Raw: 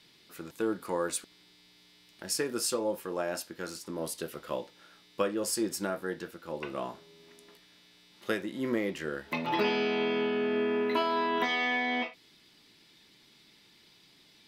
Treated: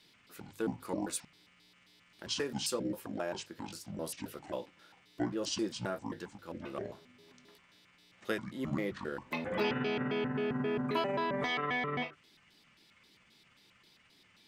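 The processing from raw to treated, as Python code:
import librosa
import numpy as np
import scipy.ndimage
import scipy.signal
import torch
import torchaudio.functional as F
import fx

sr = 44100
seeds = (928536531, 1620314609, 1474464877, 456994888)

y = fx.pitch_trill(x, sr, semitones=-9.0, every_ms=133)
y = fx.hum_notches(y, sr, base_hz=50, count=3)
y = y * librosa.db_to_amplitude(-3.5)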